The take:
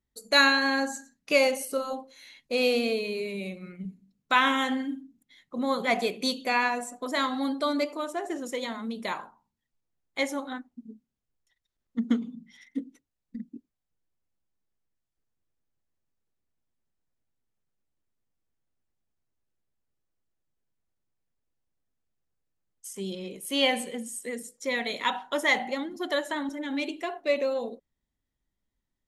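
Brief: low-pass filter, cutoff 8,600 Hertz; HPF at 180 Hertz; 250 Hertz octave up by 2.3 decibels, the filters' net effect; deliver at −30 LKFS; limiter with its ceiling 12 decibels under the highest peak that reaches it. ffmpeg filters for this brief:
ffmpeg -i in.wav -af "highpass=180,lowpass=8600,equalizer=frequency=250:width_type=o:gain=3.5,volume=1dB,alimiter=limit=-18dB:level=0:latency=1" out.wav

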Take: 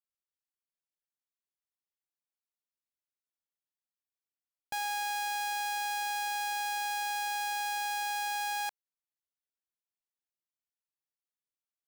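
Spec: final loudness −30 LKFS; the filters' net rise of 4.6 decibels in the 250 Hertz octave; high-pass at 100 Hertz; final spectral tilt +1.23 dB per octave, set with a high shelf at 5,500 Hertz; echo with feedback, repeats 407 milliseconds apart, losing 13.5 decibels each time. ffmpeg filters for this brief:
ffmpeg -i in.wav -af "highpass=100,equalizer=frequency=250:width_type=o:gain=7,highshelf=frequency=5500:gain=-4,aecho=1:1:407|814:0.211|0.0444,volume=4dB" out.wav

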